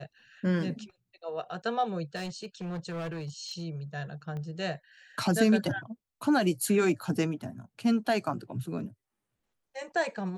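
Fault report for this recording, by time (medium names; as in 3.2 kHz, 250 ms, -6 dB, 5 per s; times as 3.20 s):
2.15–3.62 s: clipped -32.5 dBFS
4.37 s: pop -29 dBFS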